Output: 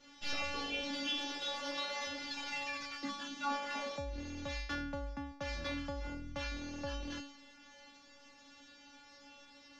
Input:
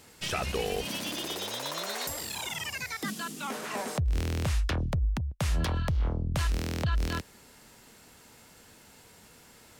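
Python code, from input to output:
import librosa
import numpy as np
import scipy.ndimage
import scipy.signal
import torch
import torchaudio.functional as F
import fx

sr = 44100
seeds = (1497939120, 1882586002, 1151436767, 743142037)

p1 = fx.cvsd(x, sr, bps=32000)
p2 = 10.0 ** (-32.0 / 20.0) * np.tanh(p1 / 10.0 ** (-32.0 / 20.0))
p3 = p1 + F.gain(torch.from_numpy(p2), -11.0).numpy()
p4 = fx.stiff_resonator(p3, sr, f0_hz=280.0, decay_s=0.66, stiffness=0.002)
y = F.gain(torch.from_numpy(p4), 12.5).numpy()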